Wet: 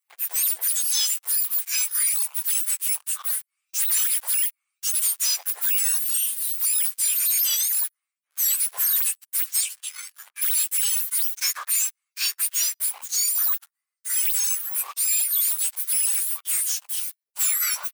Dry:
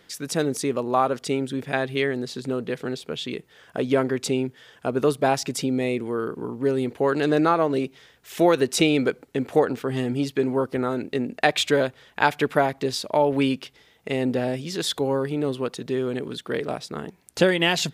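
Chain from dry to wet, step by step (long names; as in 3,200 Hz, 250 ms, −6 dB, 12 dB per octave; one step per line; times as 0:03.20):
frequency axis turned over on the octave scale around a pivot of 2,000 Hz
0:09.60–0:10.41: low-pass filter 7,100 Hz → 3,400 Hz 12 dB per octave
speech leveller within 3 dB 2 s
first difference
leveller curve on the samples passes 5
high-pass filter 1,400 Hz 12 dB per octave
level −7.5 dB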